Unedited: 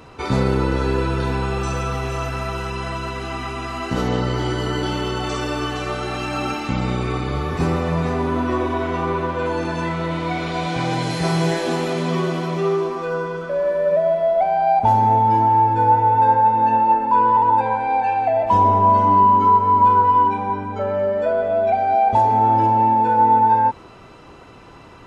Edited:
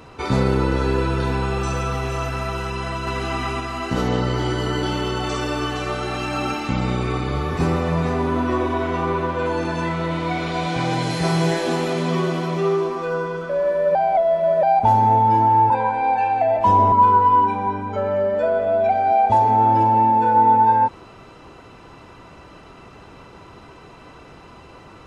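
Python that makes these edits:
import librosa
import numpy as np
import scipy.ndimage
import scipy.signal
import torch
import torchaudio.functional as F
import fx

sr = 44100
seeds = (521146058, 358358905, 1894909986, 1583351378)

y = fx.edit(x, sr, fx.clip_gain(start_s=3.07, length_s=0.53, db=3.0),
    fx.reverse_span(start_s=13.95, length_s=0.68),
    fx.cut(start_s=15.7, length_s=1.86),
    fx.cut(start_s=18.78, length_s=0.97), tone=tone)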